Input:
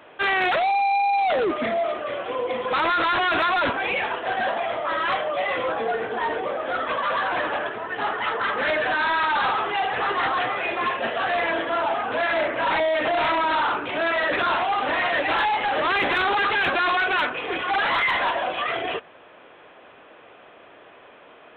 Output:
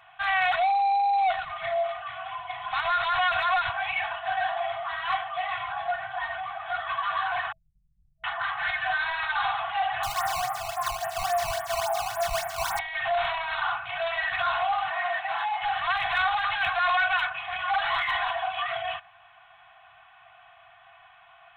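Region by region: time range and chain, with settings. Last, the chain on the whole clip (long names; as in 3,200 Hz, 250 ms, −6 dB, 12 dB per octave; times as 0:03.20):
0:07.52–0:08.24: inverse Chebyshev low-pass filter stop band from 500 Hz, stop band 70 dB + ring modulation 72 Hz
0:10.03–0:12.79: low-pass filter 1,400 Hz + parametric band 310 Hz +4.5 dB 1.9 octaves + sample-and-hold swept by an LFO 15×, swing 160% 3.6 Hz
0:14.89–0:15.62: high-pass filter 220 Hz + high-shelf EQ 2,300 Hz −9.5 dB
whole clip: comb filter 2.7 ms, depth 79%; brick-wall band-stop 200–650 Hz; level −6 dB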